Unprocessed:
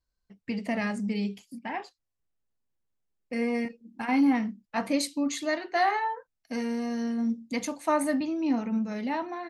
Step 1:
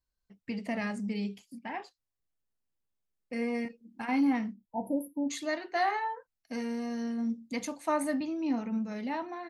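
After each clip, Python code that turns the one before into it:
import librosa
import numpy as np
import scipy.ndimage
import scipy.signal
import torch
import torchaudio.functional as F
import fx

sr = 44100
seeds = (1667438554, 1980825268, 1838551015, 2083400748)

y = fx.spec_erase(x, sr, start_s=4.54, length_s=0.76, low_hz=960.0, high_hz=9800.0)
y = y * 10.0 ** (-4.0 / 20.0)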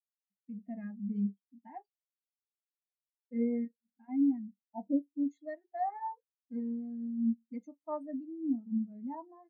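y = fx.rider(x, sr, range_db=5, speed_s=0.5)
y = fx.spectral_expand(y, sr, expansion=2.5)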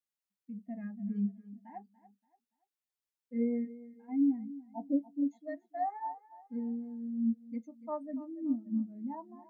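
y = fx.echo_feedback(x, sr, ms=287, feedback_pct=35, wet_db=-17.0)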